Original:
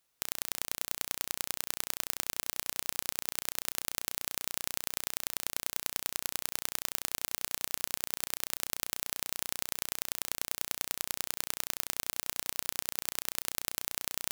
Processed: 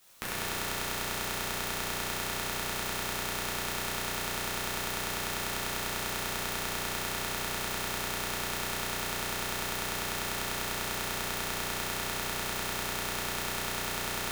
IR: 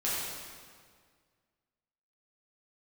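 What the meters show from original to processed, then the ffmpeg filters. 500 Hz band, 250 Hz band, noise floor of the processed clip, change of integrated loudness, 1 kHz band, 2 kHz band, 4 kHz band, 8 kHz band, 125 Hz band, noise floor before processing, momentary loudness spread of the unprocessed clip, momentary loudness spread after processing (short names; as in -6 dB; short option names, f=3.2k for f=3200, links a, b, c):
+11.0 dB, +11.0 dB, -35 dBFS, +2.0 dB, +10.5 dB, +8.5 dB, +4.5 dB, 0.0 dB, +13.0 dB, -77 dBFS, 1 LU, 0 LU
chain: -filter_complex "[0:a]acrossover=split=590|2500[a][b][c];[a]acompressor=threshold=-56dB:ratio=4[d];[b]acompressor=threshold=-54dB:ratio=4[e];[c]acompressor=threshold=-48dB:ratio=4[f];[d][e][f]amix=inputs=3:normalize=0,aeval=exprs='0.1*(cos(1*acos(clip(val(0)/0.1,-1,1)))-cos(1*PI/2))+0.0355*(cos(5*acos(clip(val(0)/0.1,-1,1)))-cos(5*PI/2))':c=same[g];[1:a]atrim=start_sample=2205[h];[g][h]afir=irnorm=-1:irlink=0,volume=4.5dB"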